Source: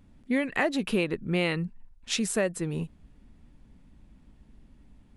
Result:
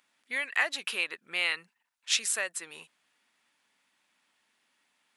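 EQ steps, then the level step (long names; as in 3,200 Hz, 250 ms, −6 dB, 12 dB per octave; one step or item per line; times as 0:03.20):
high-pass filter 1,400 Hz 12 dB per octave
+3.5 dB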